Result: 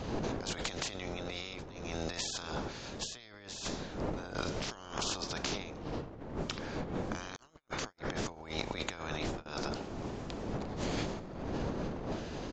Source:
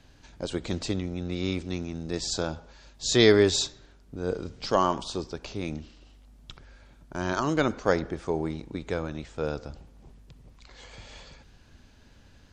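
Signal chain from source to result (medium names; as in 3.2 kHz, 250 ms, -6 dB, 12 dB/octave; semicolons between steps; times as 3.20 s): spectral peaks clipped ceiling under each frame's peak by 21 dB; wind noise 440 Hz -35 dBFS; resampled via 16 kHz; compressor with a negative ratio -38 dBFS, ratio -1; 7.36–9.46 s: gate -38 dBFS, range -42 dB; trim -2.5 dB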